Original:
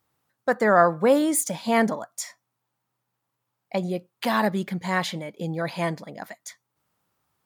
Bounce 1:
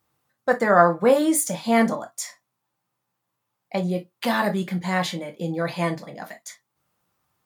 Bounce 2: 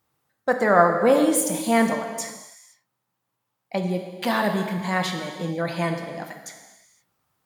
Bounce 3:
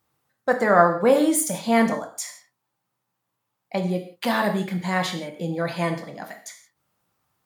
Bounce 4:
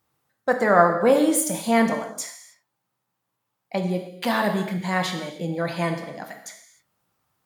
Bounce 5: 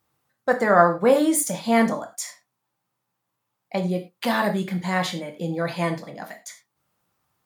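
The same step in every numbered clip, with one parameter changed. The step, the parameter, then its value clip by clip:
non-linear reverb, gate: 80, 540, 200, 330, 130 ms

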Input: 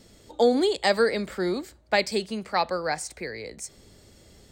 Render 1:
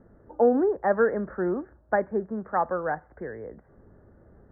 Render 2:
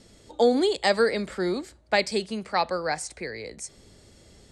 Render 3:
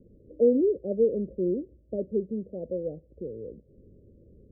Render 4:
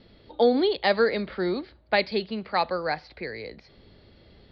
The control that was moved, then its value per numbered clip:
steep low-pass, frequency: 1700, 12000, 550, 4600 Hz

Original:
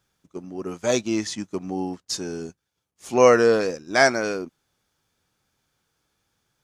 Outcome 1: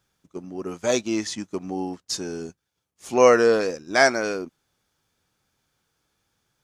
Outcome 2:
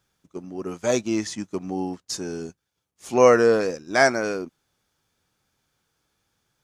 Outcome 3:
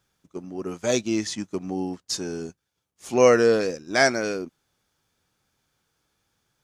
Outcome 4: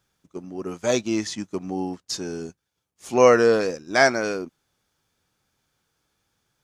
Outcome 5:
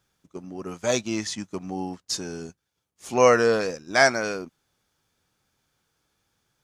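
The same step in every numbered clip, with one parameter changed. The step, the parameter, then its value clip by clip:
dynamic EQ, frequency: 130, 3700, 1000, 9500, 340 Hz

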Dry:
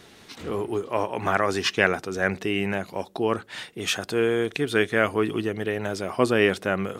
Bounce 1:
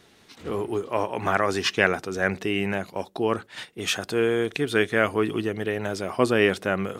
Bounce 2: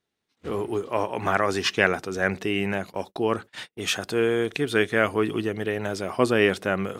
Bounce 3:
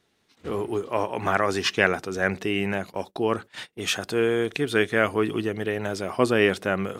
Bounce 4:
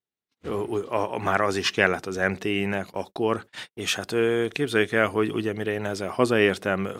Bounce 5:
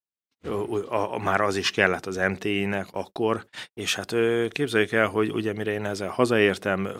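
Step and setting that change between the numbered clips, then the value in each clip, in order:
gate, range: -6, -32, -19, -46, -58 dB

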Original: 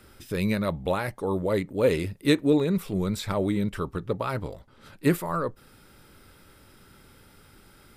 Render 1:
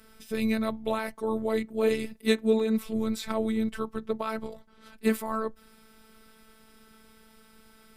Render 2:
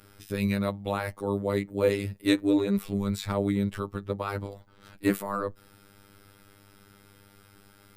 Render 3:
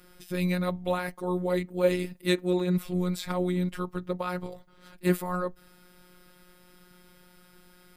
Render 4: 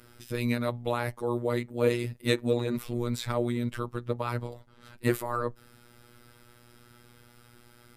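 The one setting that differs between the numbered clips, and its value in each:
robotiser, frequency: 220, 100, 180, 120 Hz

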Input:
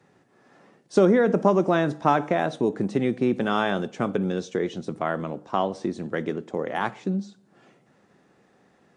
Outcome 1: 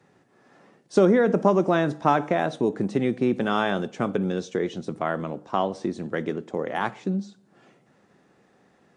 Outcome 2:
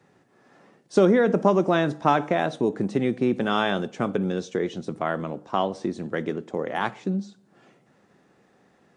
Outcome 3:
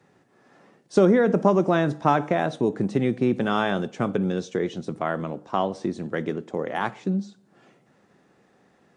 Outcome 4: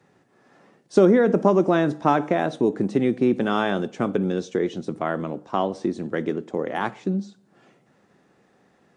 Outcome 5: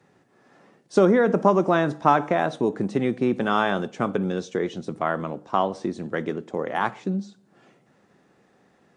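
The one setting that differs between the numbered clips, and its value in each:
dynamic EQ, frequency: 9200, 3300, 120, 310, 1100 Hz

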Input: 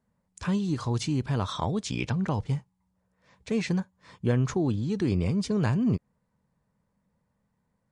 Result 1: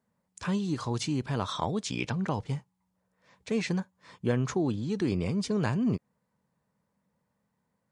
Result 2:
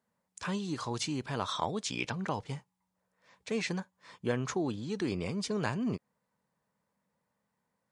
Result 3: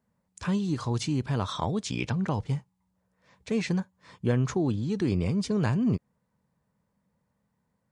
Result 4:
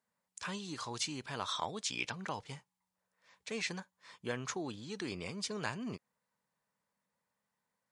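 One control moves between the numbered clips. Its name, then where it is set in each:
HPF, cutoff: 180, 500, 60, 1500 Hz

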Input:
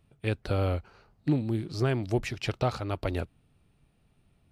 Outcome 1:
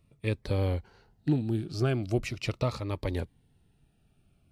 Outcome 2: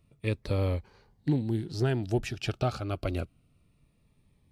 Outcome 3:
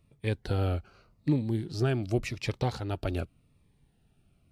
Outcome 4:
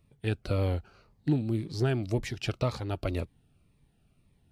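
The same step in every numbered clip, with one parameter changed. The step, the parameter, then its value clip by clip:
cascading phaser, rate: 0.4, 0.27, 0.87, 1.9 Hz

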